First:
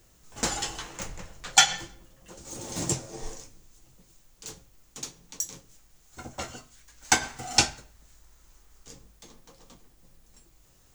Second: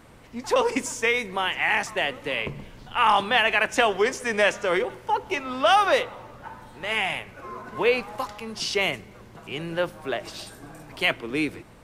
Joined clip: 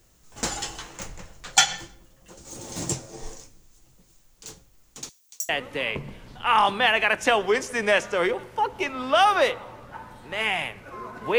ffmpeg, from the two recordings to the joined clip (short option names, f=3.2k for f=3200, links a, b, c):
-filter_complex "[0:a]asettb=1/sr,asplit=3[a][b][c];[a]atrim=end=5.094[d];[b]atrim=start=5.09:end=5.49,asetpts=PTS-STARTPTS,afade=t=in:d=0.004:c=qsin,afade=t=out:st=0.396:d=0.004:c=qsin,aderivative[e];[c]atrim=start=5.486[f];[d][e]acrossfade=d=0.004:c1=hsin:c2=qsin[g];[g][f]acrossfade=d=0.004:c1=qsin:c2=hsin,apad=whole_dur=11.38,atrim=end=11.38,atrim=end=5.492[h];[1:a]atrim=start=1.998:end=7.89[i];[h][i]acrossfade=d=0.004:c1=hsin:c2=hsin"